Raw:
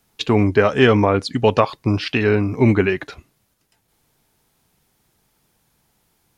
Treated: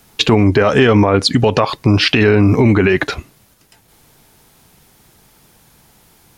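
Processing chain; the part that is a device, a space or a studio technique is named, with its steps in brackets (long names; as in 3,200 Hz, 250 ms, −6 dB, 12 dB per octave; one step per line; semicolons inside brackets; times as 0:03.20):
loud club master (downward compressor 3 to 1, threshold −17 dBFS, peak gain reduction 7 dB; hard clipping −6 dBFS, distortion −50 dB; boost into a limiter +15.5 dB)
level −1 dB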